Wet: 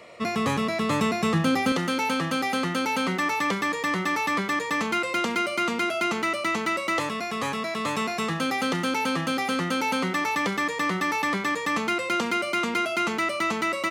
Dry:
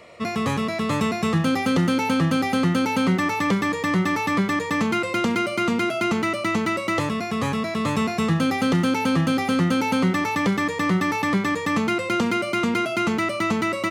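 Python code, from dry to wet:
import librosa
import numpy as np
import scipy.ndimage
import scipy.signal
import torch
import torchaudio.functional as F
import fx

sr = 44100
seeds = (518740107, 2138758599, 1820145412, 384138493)

y = fx.highpass(x, sr, hz=fx.steps((0.0, 160.0), (1.72, 550.0)), slope=6)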